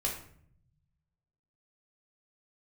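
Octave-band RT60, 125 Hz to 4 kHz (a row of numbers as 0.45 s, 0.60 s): 1.8 s, 1.2 s, 0.65 s, 0.55 s, 0.50 s, 0.40 s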